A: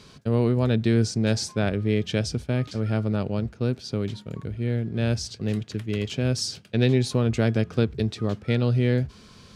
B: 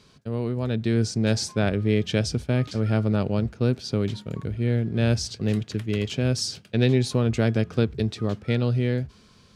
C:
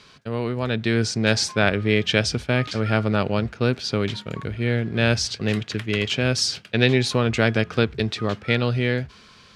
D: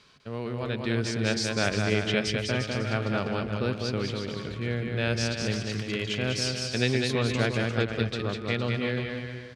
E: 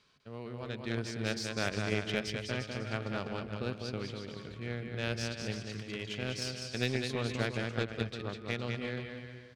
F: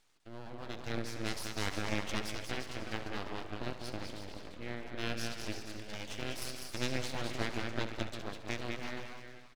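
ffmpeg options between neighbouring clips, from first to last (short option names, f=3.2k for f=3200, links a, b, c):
-af "dynaudnorm=f=210:g=9:m=10.5dB,volume=-6.5dB"
-af "equalizer=f=2k:w=0.35:g=12,volume=-1dB"
-af "aecho=1:1:200|350|462.5|546.9|610.2:0.631|0.398|0.251|0.158|0.1,volume=-8dB"
-af "aeval=exprs='0.355*(cos(1*acos(clip(val(0)/0.355,-1,1)))-cos(1*PI/2))+0.02*(cos(7*acos(clip(val(0)/0.355,-1,1)))-cos(7*PI/2))':c=same,volume=-6dB"
-filter_complex "[0:a]asplit=2[a][b];[b]aecho=0:1:70|140|210|280|350|420:0.251|0.138|0.076|0.0418|0.023|0.0126[c];[a][c]amix=inputs=2:normalize=0,aeval=exprs='abs(val(0))':c=same,volume=-1.5dB"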